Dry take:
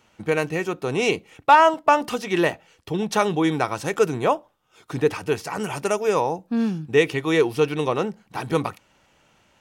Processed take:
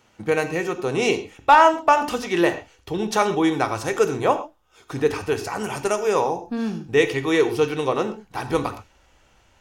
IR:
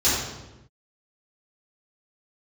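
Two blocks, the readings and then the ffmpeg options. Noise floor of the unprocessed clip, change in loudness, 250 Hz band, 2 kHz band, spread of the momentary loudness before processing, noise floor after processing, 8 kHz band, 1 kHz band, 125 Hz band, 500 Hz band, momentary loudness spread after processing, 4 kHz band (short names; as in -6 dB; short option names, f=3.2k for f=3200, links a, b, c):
-62 dBFS, +0.5 dB, 0.0 dB, +0.5 dB, 10 LU, -59 dBFS, +1.5 dB, +1.0 dB, -2.0 dB, +0.5 dB, 11 LU, +0.5 dB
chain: -filter_complex "[0:a]asplit=2[a][b];[1:a]atrim=start_sample=2205,atrim=end_sample=6174[c];[b][c]afir=irnorm=-1:irlink=0,volume=-23.5dB[d];[a][d]amix=inputs=2:normalize=0,asubboost=boost=6.5:cutoff=57"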